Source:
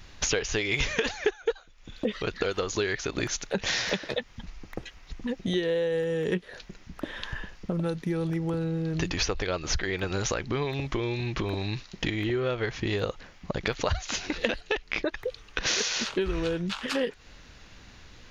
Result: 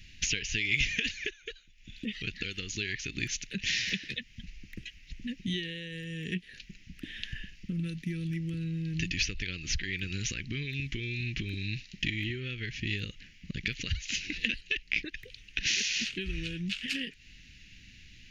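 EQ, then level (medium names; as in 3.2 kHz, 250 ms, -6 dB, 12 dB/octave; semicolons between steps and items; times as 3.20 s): Chebyshev band-stop 220–2900 Hz, order 2; high-order bell 2.2 kHz +8.5 dB 1 oct; -3.0 dB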